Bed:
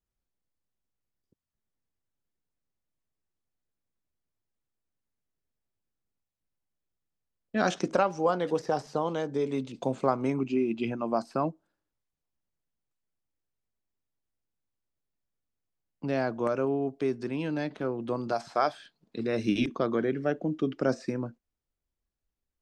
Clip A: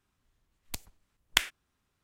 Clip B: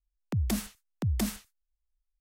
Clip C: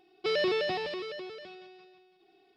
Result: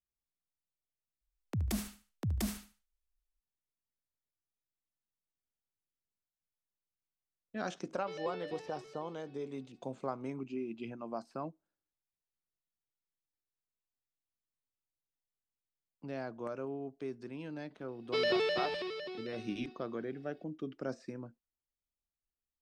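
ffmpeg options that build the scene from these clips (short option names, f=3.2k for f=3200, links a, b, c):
-filter_complex "[3:a]asplit=2[a][b];[0:a]volume=-12dB[c];[2:a]aecho=1:1:73|146|219:0.224|0.0627|0.0176[d];[a]aemphasis=mode=reproduction:type=50fm[e];[c]asplit=2[f][g];[f]atrim=end=1.214[h];[d]atrim=end=2.2,asetpts=PTS-STARTPTS,volume=-5.5dB[i];[g]atrim=start=3.406[j];[e]atrim=end=2.56,asetpts=PTS-STARTPTS,volume=-16dB,afade=t=in:d=0.004:c=hsin,afade=t=out:st=2.556:d=0.004:c=hsin,adelay=7820[k];[b]atrim=end=2.56,asetpts=PTS-STARTPTS,volume=-2.5dB,afade=t=in:d=0.004:c=hsin,afade=t=out:st=2.556:d=0.004:c=hsin,adelay=17880[l];[h][i]acrossfade=d=0.004:c1=hsin:c2=hsin[m];[m][j]acrossfade=d=0.004:c1=hsin:c2=hsin[n];[n][k][l]amix=inputs=3:normalize=0"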